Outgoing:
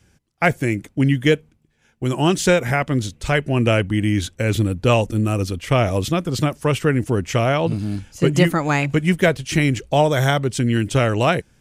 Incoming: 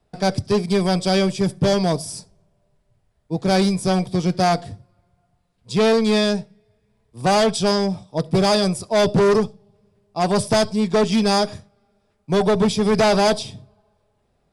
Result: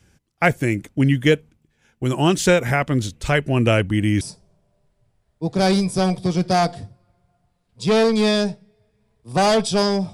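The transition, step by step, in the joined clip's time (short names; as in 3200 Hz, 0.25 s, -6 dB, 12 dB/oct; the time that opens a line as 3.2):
outgoing
4.21 switch to incoming from 2.1 s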